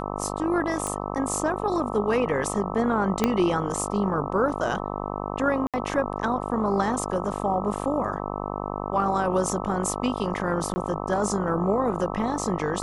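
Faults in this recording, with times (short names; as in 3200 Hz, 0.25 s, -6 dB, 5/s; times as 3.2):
buzz 50 Hz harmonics 26 -31 dBFS
0.87 pop -16 dBFS
3.24 pop -7 dBFS
5.67–5.74 gap 67 ms
10.74–10.76 gap 20 ms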